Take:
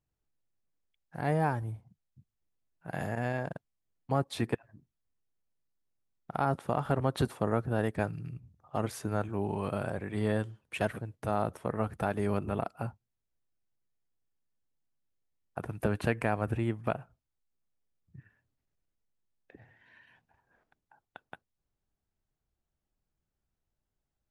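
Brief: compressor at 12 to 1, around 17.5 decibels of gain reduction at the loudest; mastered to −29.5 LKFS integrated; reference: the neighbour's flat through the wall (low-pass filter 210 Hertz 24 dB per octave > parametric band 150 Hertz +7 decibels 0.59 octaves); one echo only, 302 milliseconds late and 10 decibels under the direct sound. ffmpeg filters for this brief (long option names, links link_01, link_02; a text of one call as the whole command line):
ffmpeg -i in.wav -af "acompressor=threshold=-41dB:ratio=12,lowpass=frequency=210:width=0.5412,lowpass=frequency=210:width=1.3066,equalizer=frequency=150:width_type=o:width=0.59:gain=7,aecho=1:1:302:0.316,volume=19dB" out.wav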